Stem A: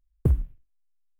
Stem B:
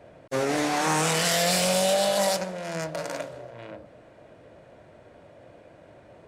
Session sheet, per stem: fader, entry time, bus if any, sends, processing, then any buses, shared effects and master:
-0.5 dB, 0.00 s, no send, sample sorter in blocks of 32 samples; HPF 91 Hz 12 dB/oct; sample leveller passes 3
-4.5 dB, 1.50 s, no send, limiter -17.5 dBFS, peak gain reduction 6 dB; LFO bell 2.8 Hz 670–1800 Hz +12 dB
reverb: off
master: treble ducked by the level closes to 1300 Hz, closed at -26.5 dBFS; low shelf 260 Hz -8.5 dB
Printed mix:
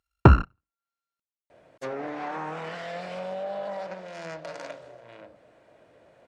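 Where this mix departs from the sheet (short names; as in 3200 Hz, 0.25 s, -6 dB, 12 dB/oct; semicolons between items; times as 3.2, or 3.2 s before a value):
stem A -0.5 dB -> +9.5 dB; stem B: missing LFO bell 2.8 Hz 670–1800 Hz +12 dB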